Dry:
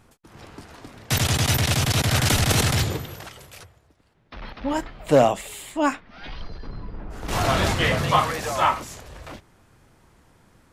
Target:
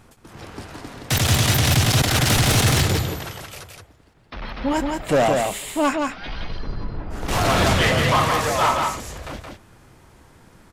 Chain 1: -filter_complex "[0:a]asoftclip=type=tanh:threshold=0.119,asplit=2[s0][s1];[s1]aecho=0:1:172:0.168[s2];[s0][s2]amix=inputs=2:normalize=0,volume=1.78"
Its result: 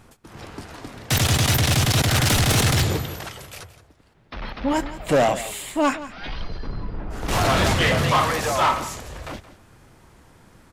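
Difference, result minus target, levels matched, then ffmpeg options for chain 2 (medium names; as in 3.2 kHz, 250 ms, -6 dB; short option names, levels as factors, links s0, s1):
echo-to-direct -11.5 dB
-filter_complex "[0:a]asoftclip=type=tanh:threshold=0.119,asplit=2[s0][s1];[s1]aecho=0:1:172:0.631[s2];[s0][s2]amix=inputs=2:normalize=0,volume=1.78"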